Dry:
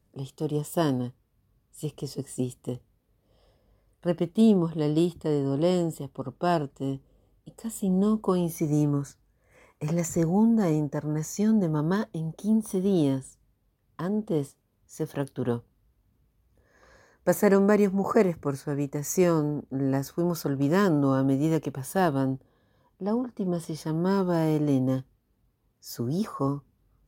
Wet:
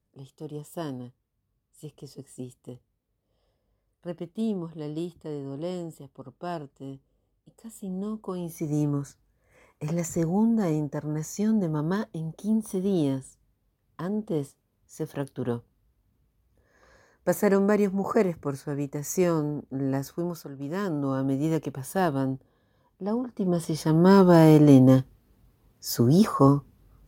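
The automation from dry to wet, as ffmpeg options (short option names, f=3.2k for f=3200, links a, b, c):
-af "volume=20.5dB,afade=t=in:st=8.33:d=0.52:silence=0.421697,afade=t=out:st=20.12:d=0.37:silence=0.266073,afade=t=in:st=20.49:d=1.03:silence=0.251189,afade=t=in:st=23.22:d=1.05:silence=0.316228"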